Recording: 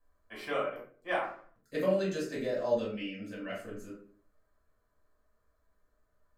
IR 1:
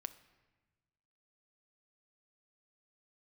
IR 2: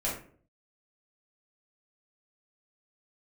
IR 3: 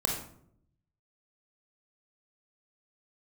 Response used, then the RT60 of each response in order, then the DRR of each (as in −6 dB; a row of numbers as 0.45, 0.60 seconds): 2; 1.3, 0.50, 0.65 seconds; 11.5, −7.0, 0.0 decibels